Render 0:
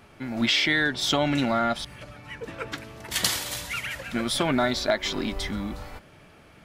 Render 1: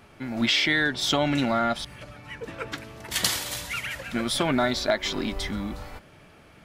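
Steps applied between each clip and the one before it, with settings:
no processing that can be heard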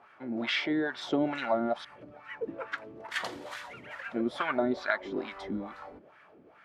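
auto-filter band-pass sine 2.3 Hz 300–1,600 Hz
level +3.5 dB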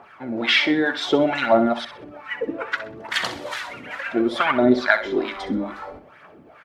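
dynamic equaliser 3,300 Hz, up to +3 dB, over −46 dBFS, Q 0.72
phase shifter 0.64 Hz, delay 4.2 ms, feedback 43%
repeating echo 64 ms, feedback 30%, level −12 dB
level +9 dB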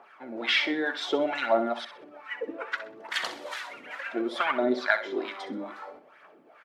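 high-pass filter 320 Hz 12 dB per octave
level −6.5 dB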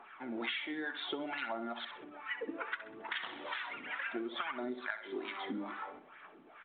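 parametric band 560 Hz −9.5 dB 0.69 octaves
downward compressor 16 to 1, threshold −36 dBFS, peak gain reduction 18 dB
level +1 dB
mu-law 64 kbit/s 8,000 Hz

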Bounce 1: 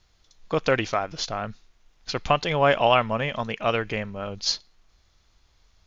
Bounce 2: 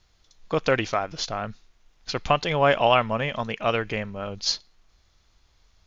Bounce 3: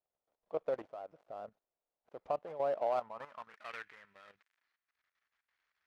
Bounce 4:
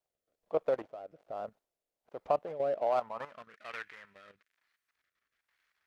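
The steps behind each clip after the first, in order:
no processing that can be heard
gap after every zero crossing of 0.18 ms; band-pass filter sweep 600 Hz → 1,800 Hz, 0:02.84–0:03.66; output level in coarse steps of 13 dB; level −5.5 dB
rotating-speaker cabinet horn 1.2 Hz; level +6.5 dB

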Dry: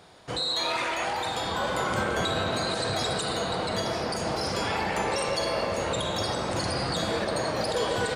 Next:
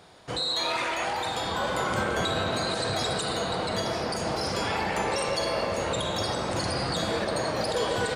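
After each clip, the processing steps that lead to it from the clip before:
no processing that can be heard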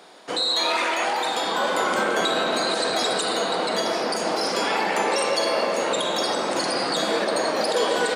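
high-pass filter 230 Hz 24 dB per octave
level +5.5 dB

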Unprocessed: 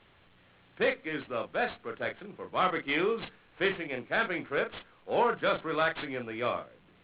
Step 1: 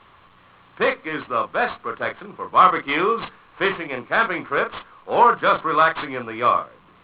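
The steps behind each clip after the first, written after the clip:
parametric band 1,100 Hz +13.5 dB 0.57 octaves
level +6 dB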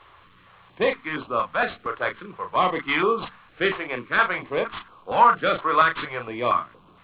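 notch on a step sequencer 4.3 Hz 200–1,900 Hz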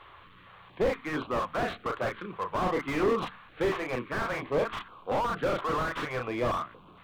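slew-rate limiting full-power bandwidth 40 Hz

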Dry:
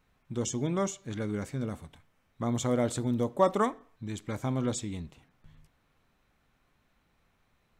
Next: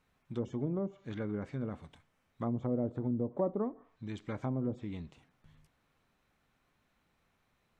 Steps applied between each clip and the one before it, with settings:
treble cut that deepens with the level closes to 470 Hz, closed at −25 dBFS
low-shelf EQ 64 Hz −7 dB
level −3 dB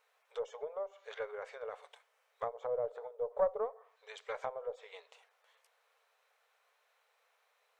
linear-phase brick-wall high-pass 420 Hz
harmonic generator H 2 −17 dB, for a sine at −23 dBFS
level +3 dB

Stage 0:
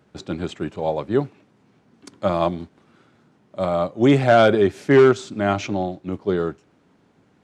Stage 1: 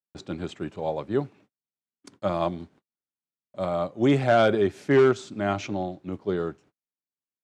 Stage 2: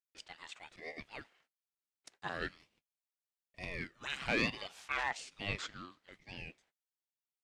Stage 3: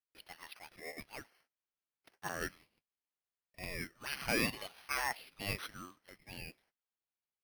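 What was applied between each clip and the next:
noise gate −47 dBFS, range −45 dB; level −5.5 dB
inverse Chebyshev high-pass filter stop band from 160 Hz, stop band 80 dB; ring modulator whose carrier an LFO sweeps 870 Hz, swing 50%, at 1.1 Hz; level −2 dB
bad sample-rate conversion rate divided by 6×, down filtered, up hold

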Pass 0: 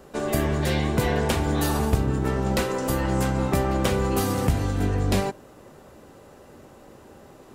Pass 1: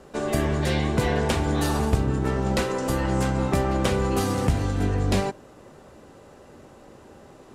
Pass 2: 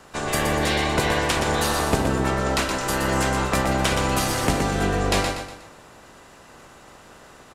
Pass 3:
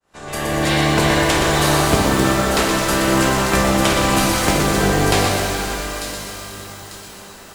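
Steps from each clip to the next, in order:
low-pass filter 10,000 Hz 12 dB per octave
ceiling on every frequency bin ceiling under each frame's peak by 16 dB; on a send: repeating echo 121 ms, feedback 40%, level −6 dB
fade in at the beginning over 0.74 s; delay with a high-pass on its return 895 ms, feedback 37%, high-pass 4,700 Hz, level −5 dB; reverb with rising layers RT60 3.4 s, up +12 semitones, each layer −8 dB, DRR 1 dB; level +3 dB

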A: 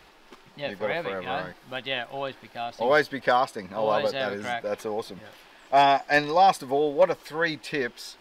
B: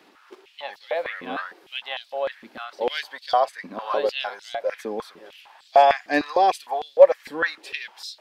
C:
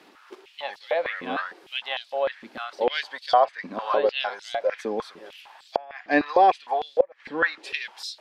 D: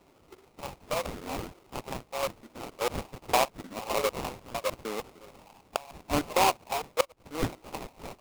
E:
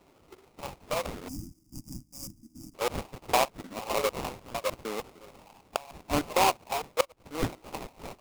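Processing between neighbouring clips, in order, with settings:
high-pass on a step sequencer 6.6 Hz 260–4,100 Hz; level −3 dB
treble cut that deepens with the level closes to 2,800 Hz, closed at −19 dBFS; gate with flip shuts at −7 dBFS, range −30 dB; level +1.5 dB
sample-rate reduction 1,700 Hz, jitter 20%; level −6.5 dB
gain on a spectral selection 0:01.28–0:02.75, 340–4,700 Hz −28 dB

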